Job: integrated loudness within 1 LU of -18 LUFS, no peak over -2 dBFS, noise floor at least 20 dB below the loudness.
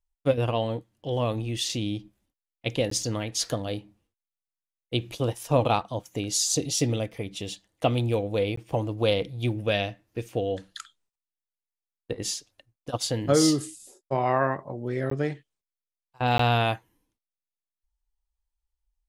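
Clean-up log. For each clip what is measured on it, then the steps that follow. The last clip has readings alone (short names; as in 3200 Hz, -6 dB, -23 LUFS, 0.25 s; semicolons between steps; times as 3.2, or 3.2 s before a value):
dropouts 4; longest dropout 14 ms; loudness -27.5 LUFS; peak -7.5 dBFS; loudness target -18.0 LUFS
-> interpolate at 2.9/8.56/15.1/16.38, 14 ms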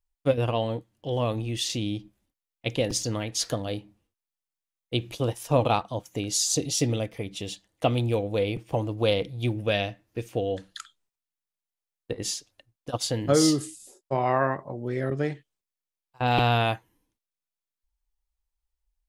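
dropouts 0; loudness -27.5 LUFS; peak -7.5 dBFS; loudness target -18.0 LUFS
-> gain +9.5 dB; limiter -2 dBFS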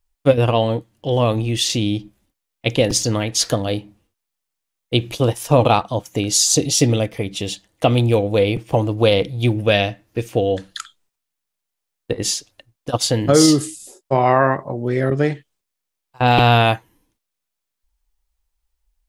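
loudness -18.5 LUFS; peak -2.0 dBFS; noise floor -81 dBFS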